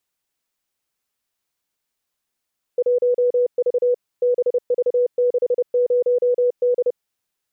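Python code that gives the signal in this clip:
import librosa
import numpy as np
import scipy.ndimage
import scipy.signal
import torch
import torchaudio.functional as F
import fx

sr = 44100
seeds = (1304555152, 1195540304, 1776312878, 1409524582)

y = fx.morse(sr, text='1V BV60D', wpm=30, hz=491.0, level_db=-14.0)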